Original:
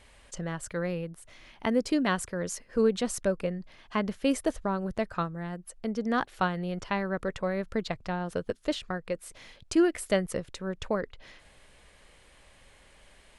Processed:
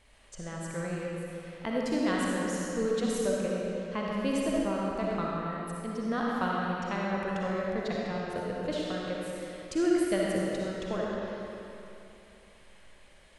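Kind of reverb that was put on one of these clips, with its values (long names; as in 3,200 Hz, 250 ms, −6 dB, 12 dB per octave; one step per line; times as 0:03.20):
comb and all-pass reverb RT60 3 s, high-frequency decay 0.8×, pre-delay 20 ms, DRR −4.5 dB
level −6.5 dB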